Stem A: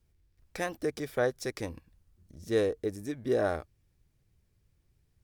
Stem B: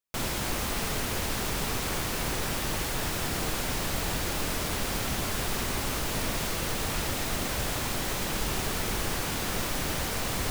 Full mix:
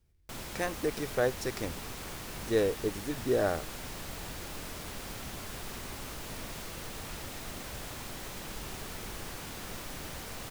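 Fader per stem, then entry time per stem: 0.0, −11.0 decibels; 0.00, 0.15 seconds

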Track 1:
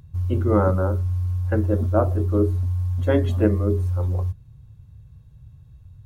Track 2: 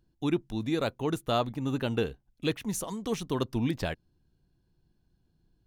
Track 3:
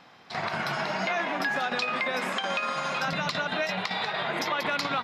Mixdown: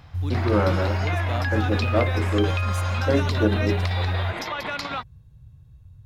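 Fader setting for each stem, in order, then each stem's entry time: −2.0, −5.5, −1.5 decibels; 0.00, 0.00, 0.00 seconds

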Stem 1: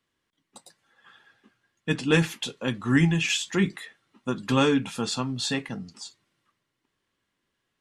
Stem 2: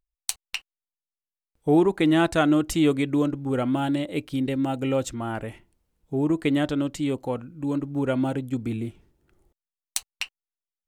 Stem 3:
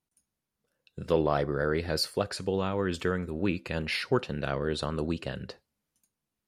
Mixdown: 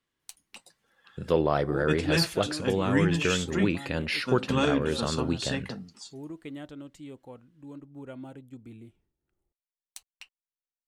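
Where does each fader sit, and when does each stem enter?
−4.5, −17.5, +1.5 decibels; 0.00, 0.00, 0.20 seconds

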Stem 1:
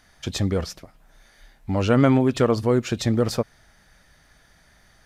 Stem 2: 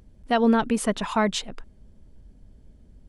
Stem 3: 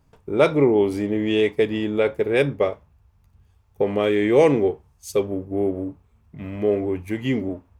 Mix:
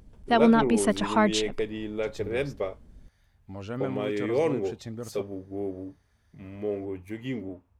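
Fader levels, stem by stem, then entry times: −16.5, 0.0, −10.0 decibels; 1.80, 0.00, 0.00 seconds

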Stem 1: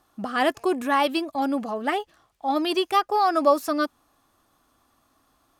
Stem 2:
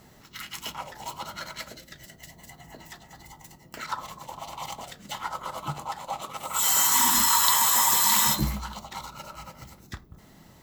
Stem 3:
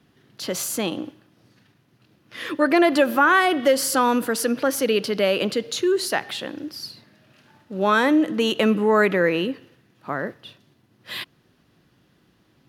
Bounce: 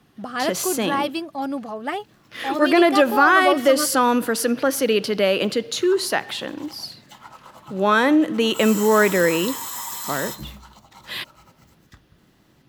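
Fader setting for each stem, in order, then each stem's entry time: −2.0, −10.0, +1.5 decibels; 0.00, 2.00, 0.00 seconds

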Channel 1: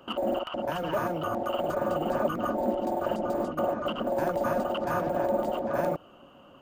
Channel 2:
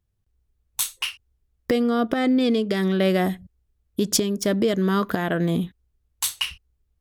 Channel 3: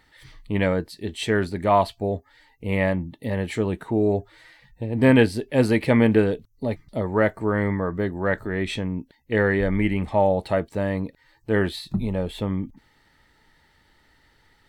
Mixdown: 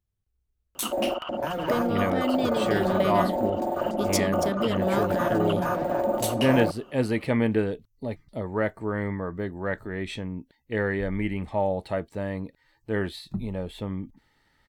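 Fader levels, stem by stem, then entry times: +1.5, −7.0, −6.0 decibels; 0.75, 0.00, 1.40 seconds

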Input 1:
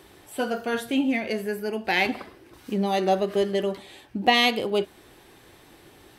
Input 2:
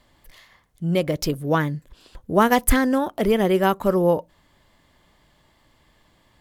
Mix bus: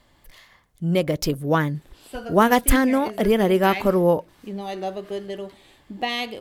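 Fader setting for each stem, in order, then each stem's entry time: −7.0, +0.5 decibels; 1.75, 0.00 seconds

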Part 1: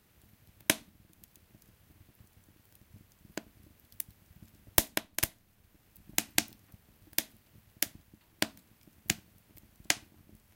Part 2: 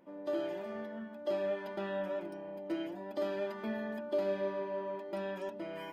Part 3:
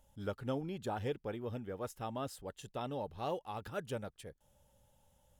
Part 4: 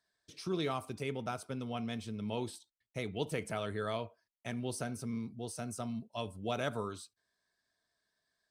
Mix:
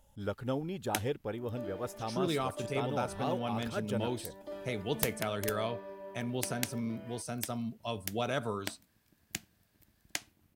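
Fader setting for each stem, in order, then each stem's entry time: −8.5, −8.5, +3.0, +2.0 decibels; 0.25, 1.30, 0.00, 1.70 seconds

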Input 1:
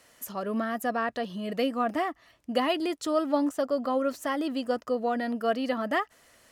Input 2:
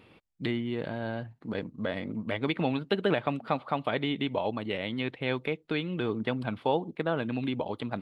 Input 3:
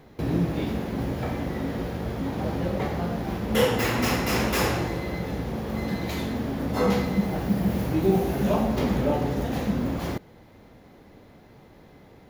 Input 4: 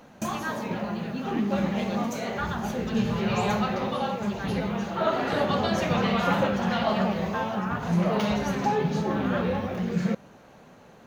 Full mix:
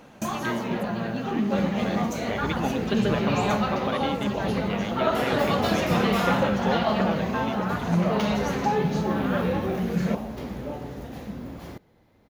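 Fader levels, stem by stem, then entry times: −12.5, −1.5, −10.0, +1.0 decibels; 0.00, 0.00, 1.60, 0.00 seconds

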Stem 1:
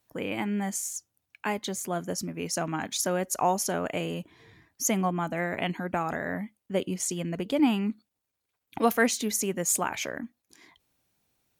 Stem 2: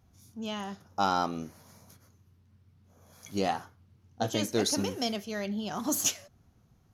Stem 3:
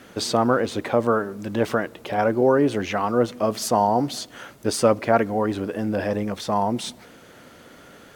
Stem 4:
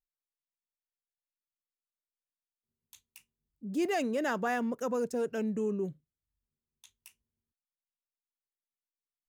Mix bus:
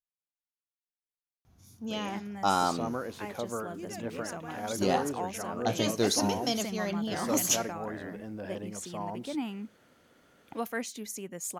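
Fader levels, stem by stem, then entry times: −11.0, +1.0, −15.5, −13.5 decibels; 1.75, 1.45, 2.45, 0.00 seconds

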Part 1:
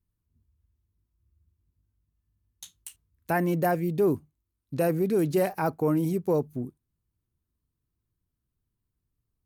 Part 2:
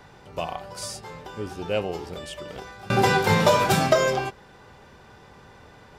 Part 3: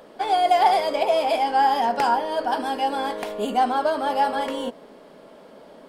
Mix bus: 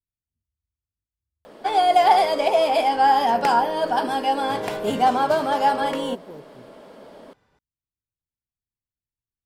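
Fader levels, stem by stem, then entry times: −16.5, −16.5, +2.0 decibels; 0.00, 1.60, 1.45 seconds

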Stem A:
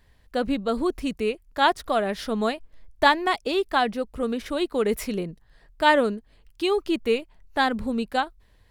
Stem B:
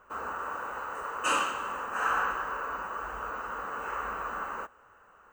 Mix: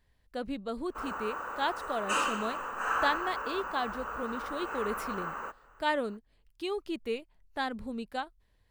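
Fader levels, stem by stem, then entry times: −11.0, −2.0 decibels; 0.00, 0.85 seconds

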